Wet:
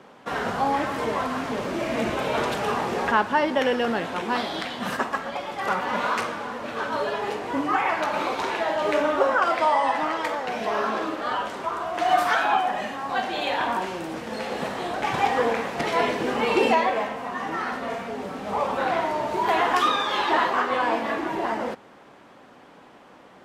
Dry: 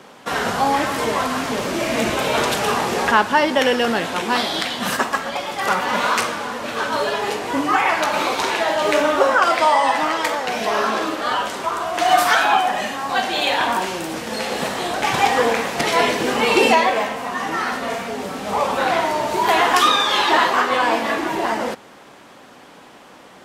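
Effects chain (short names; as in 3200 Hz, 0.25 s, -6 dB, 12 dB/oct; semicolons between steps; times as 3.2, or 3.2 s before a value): high shelf 3500 Hz -11.5 dB; gain -4.5 dB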